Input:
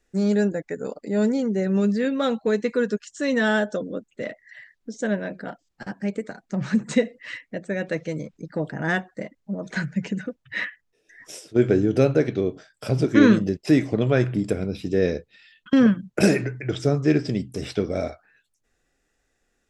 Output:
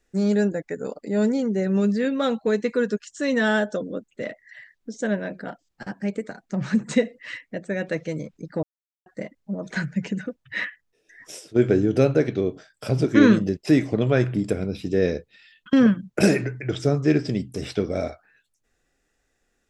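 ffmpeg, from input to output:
-filter_complex "[0:a]asplit=3[s0][s1][s2];[s0]atrim=end=8.63,asetpts=PTS-STARTPTS,afade=t=out:st=8.626:d=0.004:c=hsin[s3];[s1]atrim=start=8.63:end=9.06,asetpts=PTS-STARTPTS,volume=0[s4];[s2]atrim=start=9.06,asetpts=PTS-STARTPTS,afade=t=in:d=0.004:c=hsin[s5];[s3][s4][s5]concat=n=3:v=0:a=1"

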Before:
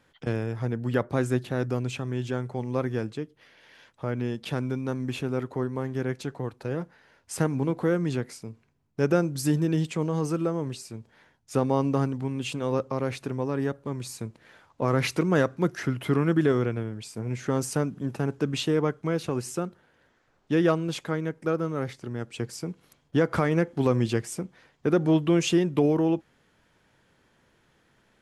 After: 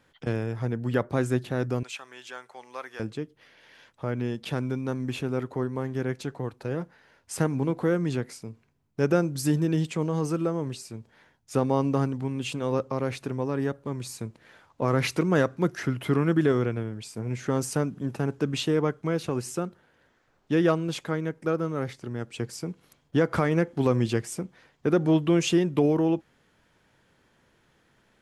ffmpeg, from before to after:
-filter_complex "[0:a]asettb=1/sr,asplit=3[s0][s1][s2];[s0]atrim=end=1.834[s3];[s1]atrim=start=1.83:end=3,asetpts=PTS-STARTPTS,afade=t=in:d=0.004:c=qsin,afade=t=out:st=1.166:d=0.004:c=qsin,highpass=1000[s4];[s2]atrim=start=2.996[s5];[s3][s4]acrossfade=d=0.004:c1=hsin:c2=qsin[s6];[s6][s5]acrossfade=d=0.004:c1=qsin:c2=hsin"

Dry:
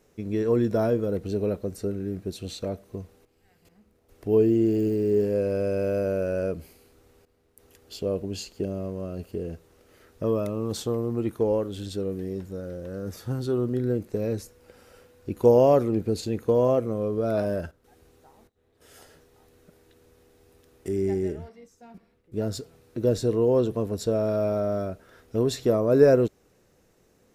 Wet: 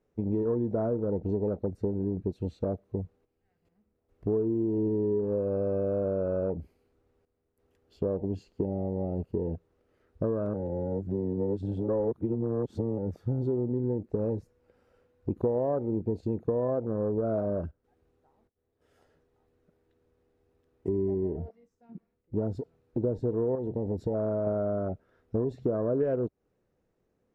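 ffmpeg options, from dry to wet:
-filter_complex "[0:a]asettb=1/sr,asplit=3[s0][s1][s2];[s0]atrim=end=23.554[s3];[s1]atrim=start=23.55:end=24.47,asetpts=PTS-STARTPTS,afade=t=in:d=0.004:c=qsin,afade=t=out:st=0.916:d=0.004:c=qsin,acompressor=threshold=0.0355:ratio=3:attack=3.2:release=140:knee=1:detection=peak[s4];[s2]atrim=start=24.466[s5];[s3][s4]acrossfade=d=0.004:c1=hsin:c2=qsin[s6];[s6][s5]acrossfade=d=0.004:c1=qsin:c2=hsin,asplit=3[s7][s8][s9];[s7]atrim=end=10.542[s10];[s8]atrim=start=10.538:end=12.982,asetpts=PTS-STARTPTS,areverse[s11];[s9]atrim=start=12.978[s12];[s10][s11]acrossfade=d=0.004:c1=hsin:c2=hsin[s13];[s13][s12]acrossfade=d=0.004:c1=hsin:c2=hsin,afwtdn=0.02,lowpass=f=1300:p=1,acompressor=threshold=0.0282:ratio=6,volume=1.78"

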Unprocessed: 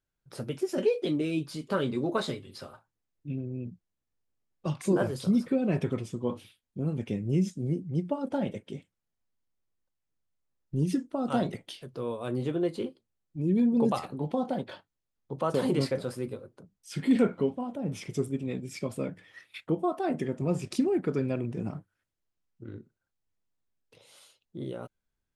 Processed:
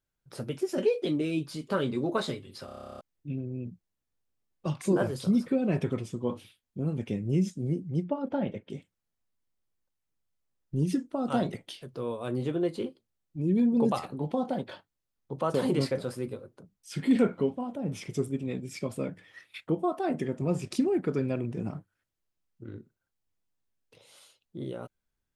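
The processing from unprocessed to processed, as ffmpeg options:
-filter_complex "[0:a]asettb=1/sr,asplit=3[s0][s1][s2];[s0]atrim=end=8.044[s3];[s1]atrim=start=8.04:end=8.7,asetpts=PTS-STARTPTS,afade=t=in:d=0.004:c=qsin,afade=t=out:st=0.656:d=0.004:c=qsin,lowpass=3200[s4];[s2]atrim=start=8.696[s5];[s3][s4]acrossfade=d=0.004:c1=hsin:c2=qsin[s6];[s6][s5]acrossfade=d=0.004:c1=qsin:c2=hsin,asplit=13[s7][s8][s9][s10][s11][s12][s13][s14][s15][s16][s17][s18][s19];[s7]atrim=end=2.682[s20];[s8]atrim=start=2.648:end=2.682[s21];[s9]atrim=start=2.648:end=2.682[s22];[s10]atrim=start=2.648:end=2.682[s23];[s11]atrim=start=2.648:end=2.682[s24];[s12]atrim=start=2.648:end=2.682[s25];[s13]atrim=start=2.648:end=2.682[s26];[s14]atrim=start=2.648:end=2.682[s27];[s15]atrim=start=2.648:end=2.682[s28];[s16]atrim=start=2.648:end=2.682[s29];[s17]atrim=start=2.648:end=2.682[s30];[s18]atrim=start=2.648:end=2.682[s31];[s19]atrim=start=3.008[s32];[s20][s21]acrossfade=d=0.004:c1=hsin:c2=hsin[s33];[s33][s22]acrossfade=d=0.004:c1=hsin:c2=hsin[s34];[s34][s23]acrossfade=d=0.004:c1=hsin:c2=hsin[s35];[s35][s24]acrossfade=d=0.004:c1=hsin:c2=hsin[s36];[s36][s25]acrossfade=d=0.004:c1=hsin:c2=hsin[s37];[s37][s26]acrossfade=d=0.004:c1=hsin:c2=hsin[s38];[s38][s27]acrossfade=d=0.004:c1=hsin:c2=hsin[s39];[s39][s28]acrossfade=d=0.004:c1=hsin:c2=hsin[s40];[s40][s29]acrossfade=d=0.004:c1=hsin:c2=hsin[s41];[s41][s30]acrossfade=d=0.004:c1=hsin:c2=hsin[s42];[s42][s31]acrossfade=d=0.004:c1=hsin:c2=hsin[s43];[s43][s32]acrossfade=d=0.004:c1=hsin:c2=hsin"

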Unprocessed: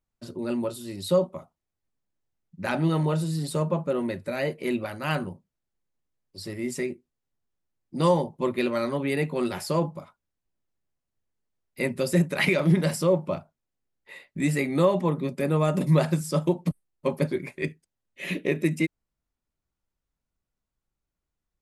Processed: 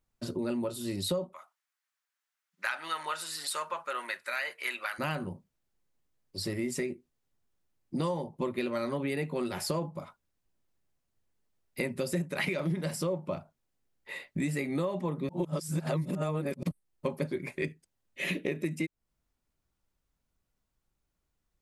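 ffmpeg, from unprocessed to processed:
-filter_complex "[0:a]asplit=3[s0][s1][s2];[s0]afade=t=out:st=1.32:d=0.02[s3];[s1]highpass=f=1400:t=q:w=1.7,afade=t=in:st=1.32:d=0.02,afade=t=out:st=4.98:d=0.02[s4];[s2]afade=t=in:st=4.98:d=0.02[s5];[s3][s4][s5]amix=inputs=3:normalize=0,asplit=3[s6][s7][s8];[s6]atrim=end=15.292[s9];[s7]atrim=start=15.288:end=16.632,asetpts=PTS-STARTPTS,areverse[s10];[s8]atrim=start=16.628[s11];[s9][s10]acrossfade=d=0.004:c1=hsin:c2=hsin[s12];[s12][s11]acrossfade=d=0.004:c1=hsin:c2=hsin,acompressor=threshold=0.02:ratio=5,volume=1.58"

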